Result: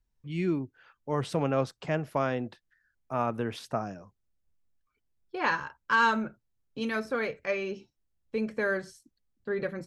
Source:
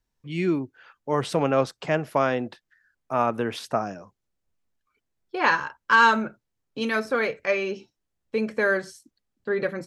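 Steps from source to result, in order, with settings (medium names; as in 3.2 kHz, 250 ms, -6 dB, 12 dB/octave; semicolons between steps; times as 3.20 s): bass shelf 140 Hz +11.5 dB; trim -7 dB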